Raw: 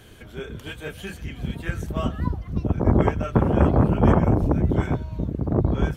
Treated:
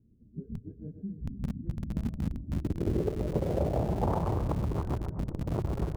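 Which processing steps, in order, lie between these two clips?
local Wiener filter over 41 samples; dynamic bell 250 Hz, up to -6 dB, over -34 dBFS, Q 3; spectral noise reduction 14 dB; two-band feedback delay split 410 Hz, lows 294 ms, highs 126 ms, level -8.5 dB; low-pass sweep 230 Hz -> 1.1 kHz, 2.21–4.42 s; in parallel at -9 dB: Schmitt trigger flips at -21.5 dBFS; on the sum: compression 2:1, threshold -32 dBFS, peak gain reduction 12 dB; trim -2.5 dB

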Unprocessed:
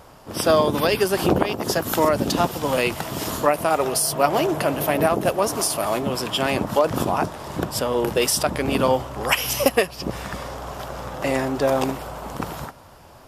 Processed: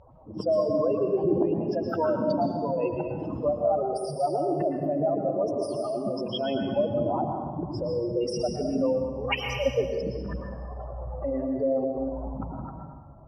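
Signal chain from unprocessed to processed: spectral contrast enhancement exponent 3.6; low-pass 3.5 kHz 12 dB/octave; on a send: reverberation RT60 1.4 s, pre-delay 106 ms, DRR 2 dB; on the sum: trim -6.5 dB

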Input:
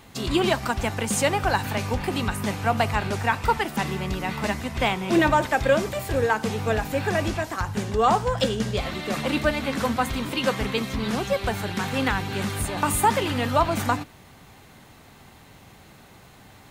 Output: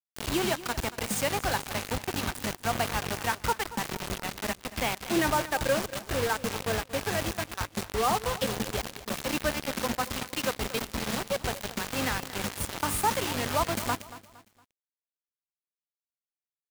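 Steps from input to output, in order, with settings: band-stop 3.5 kHz, Q 23; bit crusher 4-bit; on a send: feedback delay 231 ms, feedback 37%, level -16 dB; on the sum: trim -7 dB

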